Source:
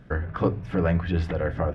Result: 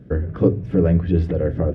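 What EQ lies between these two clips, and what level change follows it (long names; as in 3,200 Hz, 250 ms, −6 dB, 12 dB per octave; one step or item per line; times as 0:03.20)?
high-pass filter 55 Hz
low shelf with overshoot 610 Hz +11.5 dB, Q 1.5
−5.0 dB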